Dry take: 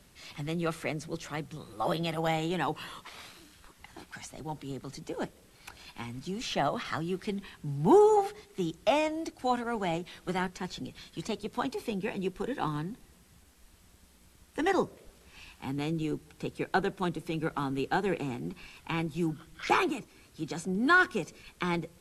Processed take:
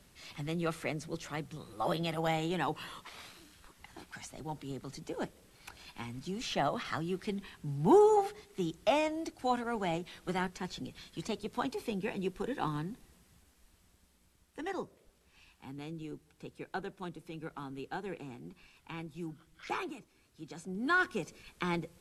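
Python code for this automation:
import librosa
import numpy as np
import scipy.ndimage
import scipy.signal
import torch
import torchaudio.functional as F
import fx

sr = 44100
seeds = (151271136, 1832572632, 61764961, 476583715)

y = fx.gain(x, sr, db=fx.line((12.92, -2.5), (14.66, -11.0), (20.46, -11.0), (21.28, -3.0)))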